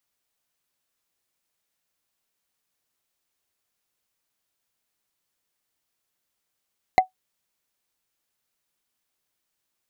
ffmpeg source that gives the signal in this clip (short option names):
-f lavfi -i "aevalsrc='0.447*pow(10,-3*t/0.12)*sin(2*PI*748*t)+0.188*pow(10,-3*t/0.036)*sin(2*PI*2062.2*t)+0.0794*pow(10,-3*t/0.016)*sin(2*PI*4042.2*t)+0.0335*pow(10,-3*t/0.009)*sin(2*PI*6681.9*t)+0.0141*pow(10,-3*t/0.005)*sin(2*PI*9978.3*t)':d=0.45:s=44100"